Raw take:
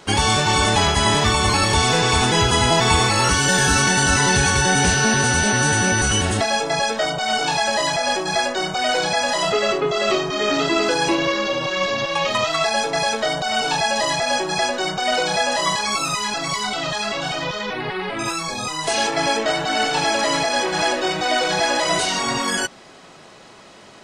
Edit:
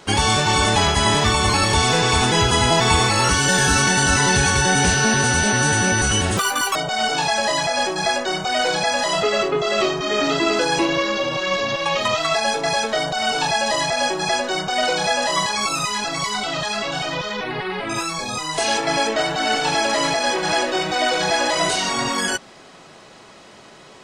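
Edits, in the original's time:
6.37–7.05 s: speed 177%

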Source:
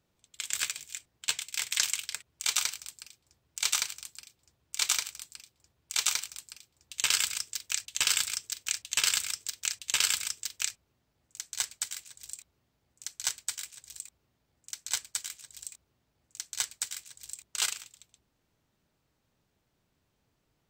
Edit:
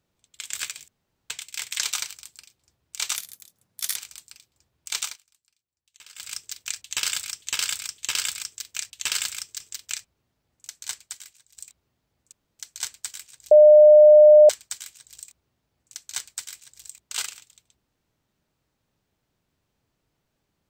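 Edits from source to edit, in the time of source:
0.88–1.30 s: room tone
1.84–2.47 s: delete
3.79–5.00 s: speed 151%
6.03–7.38 s: dip -22.5 dB, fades 0.19 s
7.90–8.46 s: loop, 3 plays
9.52–10.31 s: delete
11.45–12.28 s: fade out, to -12.5 dB
13.03 s: insert room tone 0.27 s
13.95–14.93 s: bleep 604 Hz -7.5 dBFS

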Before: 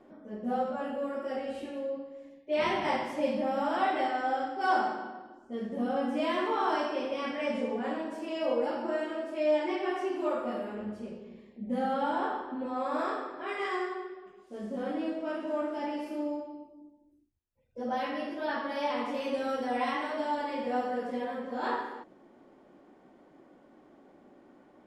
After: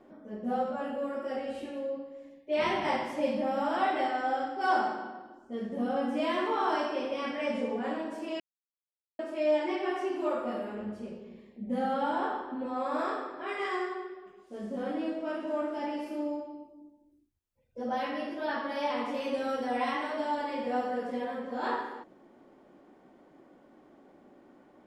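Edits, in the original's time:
8.40–9.19 s: mute

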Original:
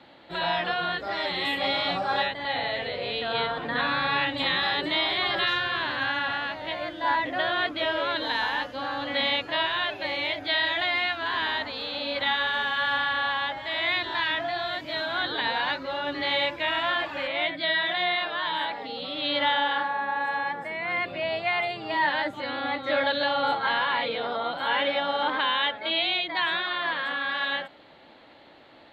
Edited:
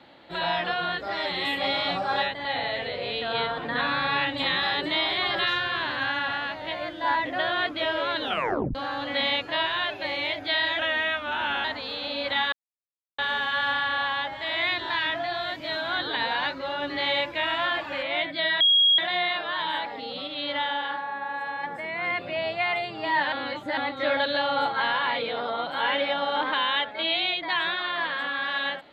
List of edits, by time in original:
8.21 s: tape stop 0.54 s
10.79–11.55 s: speed 89%
12.43 s: insert silence 0.66 s
17.85 s: add tone 3.29 kHz -15.5 dBFS 0.38 s
19.14–20.50 s: gain -4 dB
22.19–22.64 s: reverse

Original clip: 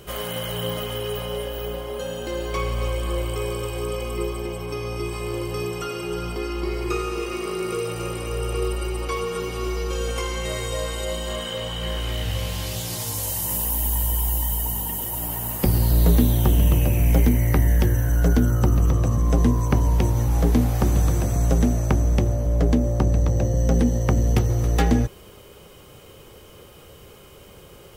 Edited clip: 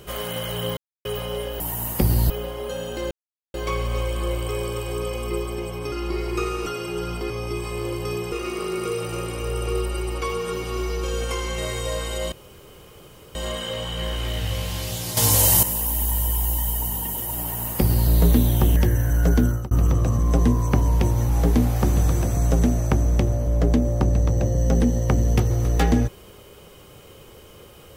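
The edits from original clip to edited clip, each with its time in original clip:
0.77–1.05 s: mute
2.41 s: insert silence 0.43 s
4.79–5.81 s: swap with 6.45–7.19 s
11.19 s: insert room tone 1.03 s
13.01–13.47 s: gain +10.5 dB
15.24–15.94 s: copy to 1.60 s
16.60–17.75 s: delete
18.45–18.70 s: fade out

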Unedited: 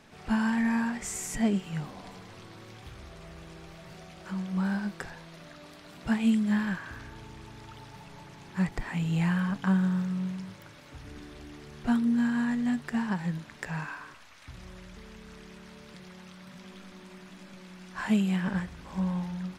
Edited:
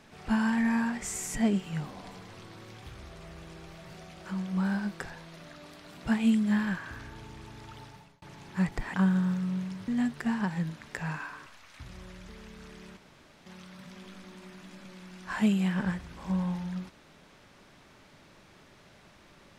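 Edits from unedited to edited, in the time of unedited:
7.83–8.22 s: fade out
8.94–9.62 s: delete
10.56–12.56 s: delete
15.65–16.14 s: room tone

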